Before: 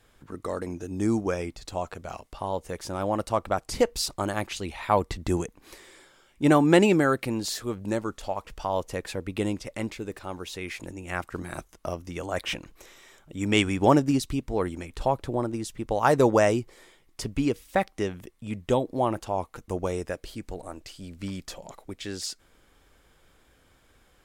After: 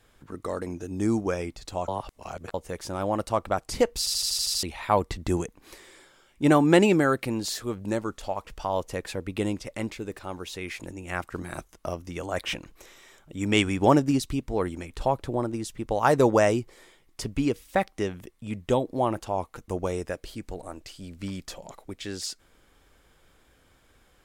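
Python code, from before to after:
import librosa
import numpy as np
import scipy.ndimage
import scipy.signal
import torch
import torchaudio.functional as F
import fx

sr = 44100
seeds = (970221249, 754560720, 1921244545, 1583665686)

y = fx.edit(x, sr, fx.reverse_span(start_s=1.88, length_s=0.66),
    fx.stutter_over(start_s=3.99, slice_s=0.08, count=8), tone=tone)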